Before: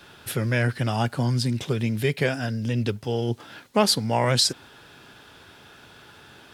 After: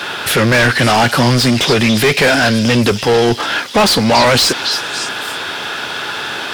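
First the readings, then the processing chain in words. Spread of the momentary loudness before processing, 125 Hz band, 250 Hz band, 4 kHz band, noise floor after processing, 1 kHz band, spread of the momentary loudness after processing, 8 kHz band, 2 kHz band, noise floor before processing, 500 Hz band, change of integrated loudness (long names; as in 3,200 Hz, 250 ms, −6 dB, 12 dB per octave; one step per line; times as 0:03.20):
8 LU, +7.5 dB, +13.0 dB, +14.0 dB, −24 dBFS, +15.0 dB, 10 LU, +11.5 dB, +18.0 dB, −50 dBFS, +13.0 dB, +11.5 dB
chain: mid-hump overdrive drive 32 dB, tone 4,200 Hz, clips at −6.5 dBFS
echo through a band-pass that steps 282 ms, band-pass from 4,300 Hz, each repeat 0.7 octaves, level −4 dB
level +3.5 dB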